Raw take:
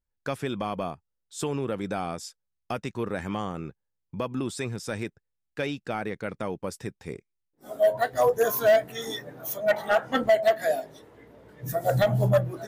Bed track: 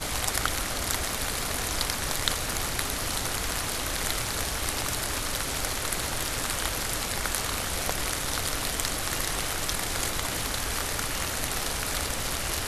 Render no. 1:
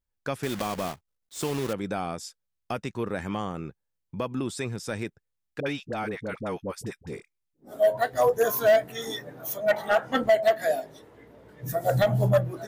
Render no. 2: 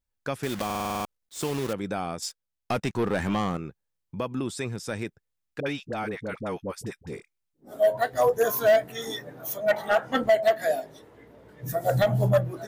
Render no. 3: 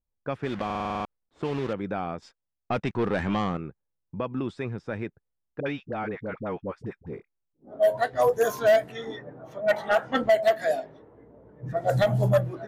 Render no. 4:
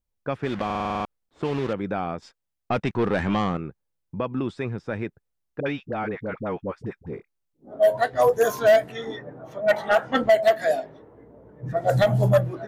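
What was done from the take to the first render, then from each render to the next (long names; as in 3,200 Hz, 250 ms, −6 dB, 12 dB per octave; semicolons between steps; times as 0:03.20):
0:00.43–0:01.74: one scale factor per block 3 bits; 0:05.60–0:07.74: all-pass dispersion highs, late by 62 ms, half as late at 670 Hz
0:00.65: stutter in place 0.05 s, 8 plays; 0:02.22–0:03.57: leveller curve on the samples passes 2
low-pass that shuts in the quiet parts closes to 800 Hz, open at −18 dBFS
level +3 dB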